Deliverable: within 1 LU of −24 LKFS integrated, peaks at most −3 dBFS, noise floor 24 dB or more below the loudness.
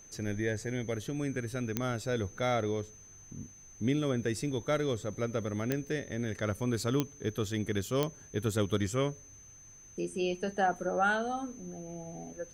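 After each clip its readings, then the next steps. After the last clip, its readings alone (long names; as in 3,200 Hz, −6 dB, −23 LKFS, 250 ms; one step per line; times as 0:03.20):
number of clicks 4; interfering tone 6,200 Hz; level of the tone −52 dBFS; integrated loudness −33.5 LKFS; sample peak −13.0 dBFS; target loudness −24.0 LKFS
→ click removal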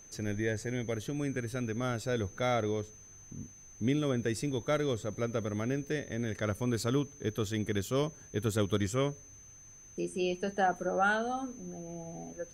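number of clicks 0; interfering tone 6,200 Hz; level of the tone −52 dBFS
→ notch filter 6,200 Hz, Q 30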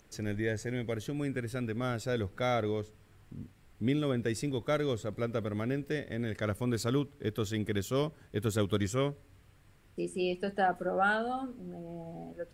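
interfering tone none found; integrated loudness −33.5 LKFS; sample peak −16.0 dBFS; target loudness −24.0 LKFS
→ level +9.5 dB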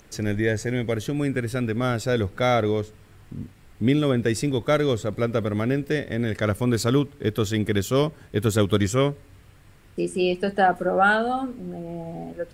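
integrated loudness −24.0 LKFS; sample peak −6.5 dBFS; background noise floor −51 dBFS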